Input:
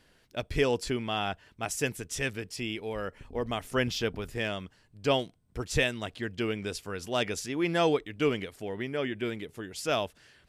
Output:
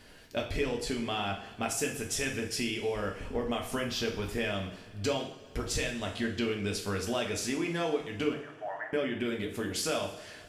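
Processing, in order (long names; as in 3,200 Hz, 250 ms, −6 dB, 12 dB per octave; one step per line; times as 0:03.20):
0:08.33–0:08.93: Chebyshev band-pass filter 590–1,800 Hz, order 5
downward compressor 6 to 1, threshold −39 dBFS, peak gain reduction 17.5 dB
coupled-rooms reverb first 0.51 s, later 2.6 s, from −18 dB, DRR 0.5 dB
level +7 dB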